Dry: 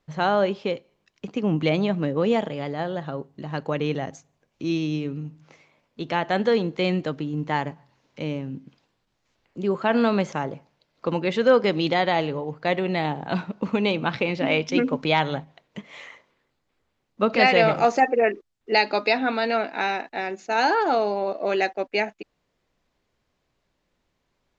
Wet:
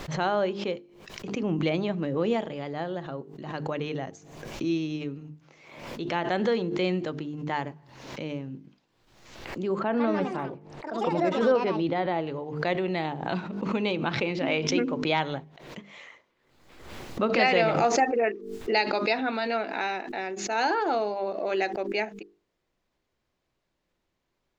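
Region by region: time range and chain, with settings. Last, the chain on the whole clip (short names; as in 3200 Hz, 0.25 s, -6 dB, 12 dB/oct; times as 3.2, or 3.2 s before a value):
9.79–12.27 LPF 1200 Hz 6 dB/oct + echoes that change speed 0.167 s, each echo +5 st, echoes 2, each echo -6 dB
whole clip: bell 350 Hz +5.5 dB 0.2 oct; notches 50/100/150/200/250/300/350/400/450 Hz; backwards sustainer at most 59 dB/s; gain -5 dB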